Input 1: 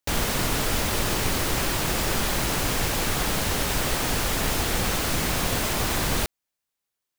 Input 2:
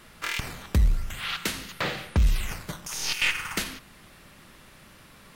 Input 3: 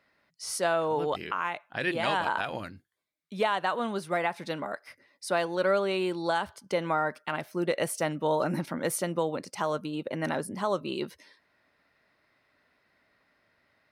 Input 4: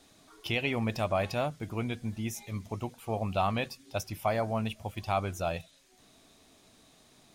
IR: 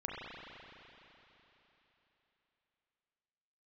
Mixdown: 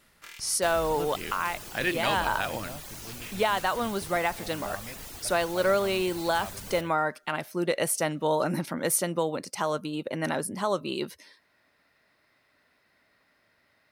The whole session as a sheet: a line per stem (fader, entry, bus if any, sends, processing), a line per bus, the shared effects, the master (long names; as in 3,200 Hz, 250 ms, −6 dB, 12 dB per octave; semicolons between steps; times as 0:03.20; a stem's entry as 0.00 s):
−18.0 dB, 0.55 s, no send, reverb reduction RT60 0.96 s
−13.5 dB, 0.00 s, no send, automatic ducking −9 dB, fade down 0.70 s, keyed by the third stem
+1.0 dB, 0.00 s, no send, no processing
−13.0 dB, 1.30 s, no send, high-shelf EQ 5,100 Hz −11 dB; noise that follows the level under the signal 20 dB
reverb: not used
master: high-shelf EQ 5,200 Hz +8 dB